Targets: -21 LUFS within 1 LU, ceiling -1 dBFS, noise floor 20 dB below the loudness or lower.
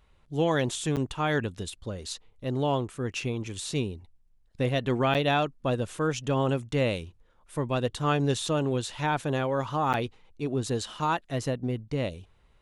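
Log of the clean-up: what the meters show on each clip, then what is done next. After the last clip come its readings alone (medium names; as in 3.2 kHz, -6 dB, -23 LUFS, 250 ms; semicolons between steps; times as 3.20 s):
dropouts 3; longest dropout 8.3 ms; loudness -29.0 LUFS; peak level -13.0 dBFS; loudness target -21.0 LUFS
-> interpolate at 0.96/5.14/9.93 s, 8.3 ms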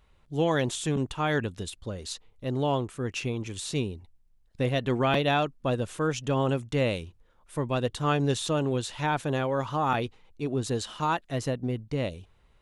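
dropouts 0; loudness -29.0 LUFS; peak level -12.5 dBFS; loudness target -21.0 LUFS
-> trim +8 dB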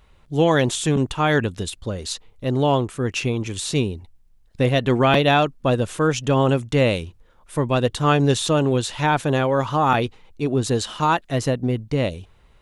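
loudness -21.0 LUFS; peak level -4.5 dBFS; noise floor -54 dBFS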